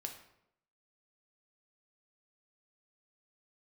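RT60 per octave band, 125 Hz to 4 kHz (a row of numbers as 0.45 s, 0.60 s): 0.80 s, 0.80 s, 0.85 s, 0.75 s, 0.65 s, 0.55 s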